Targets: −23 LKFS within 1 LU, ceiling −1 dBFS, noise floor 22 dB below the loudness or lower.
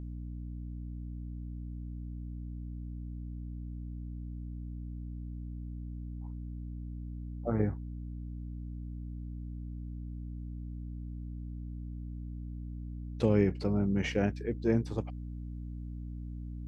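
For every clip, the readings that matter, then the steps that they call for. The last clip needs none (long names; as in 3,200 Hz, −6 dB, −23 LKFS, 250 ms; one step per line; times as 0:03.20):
mains hum 60 Hz; hum harmonics up to 300 Hz; level of the hum −38 dBFS; integrated loudness −37.5 LKFS; sample peak −13.0 dBFS; target loudness −23.0 LKFS
→ mains-hum notches 60/120/180/240/300 Hz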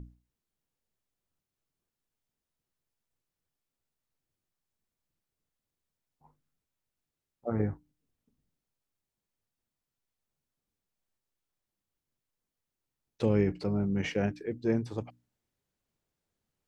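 mains hum none found; integrated loudness −31.5 LKFS; sample peak −13.5 dBFS; target loudness −23.0 LKFS
→ level +8.5 dB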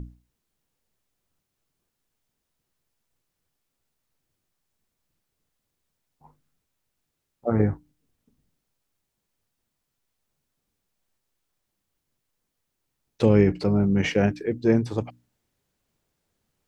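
integrated loudness −23.0 LKFS; sample peak −5.0 dBFS; background noise floor −81 dBFS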